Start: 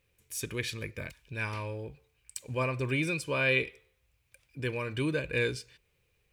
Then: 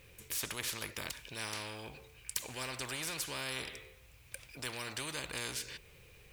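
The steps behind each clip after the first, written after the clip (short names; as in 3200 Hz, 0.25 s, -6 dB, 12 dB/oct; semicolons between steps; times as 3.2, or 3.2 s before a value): spectral compressor 4:1; gain +1 dB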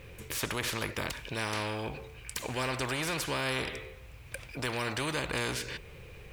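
high shelf 3100 Hz -12 dB; in parallel at +1 dB: limiter -33.5 dBFS, peak gain reduction 8 dB; on the sum: gain +5 dB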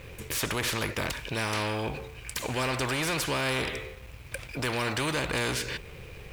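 sample leveller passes 2; gain -2.5 dB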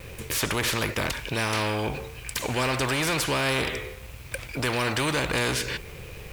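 in parallel at -6 dB: requantised 8-bit, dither triangular; on the sum: vibrato 1.5 Hz 33 cents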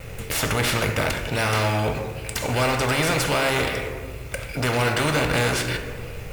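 in parallel at -6.5 dB: decimation with a swept rate 8×, swing 60% 2.6 Hz; on the sum: reverb RT60 1.9 s, pre-delay 4 ms, DRR 5.5 dB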